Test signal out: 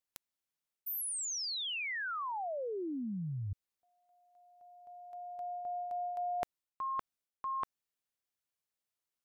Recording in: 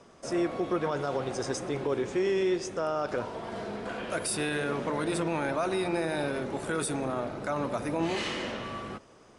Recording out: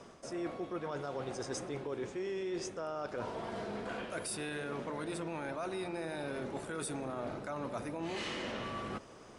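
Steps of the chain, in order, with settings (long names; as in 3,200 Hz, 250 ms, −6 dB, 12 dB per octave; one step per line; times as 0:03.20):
reversed playback
downward compressor 5 to 1, threshold −39 dBFS
reversed playback
level +2 dB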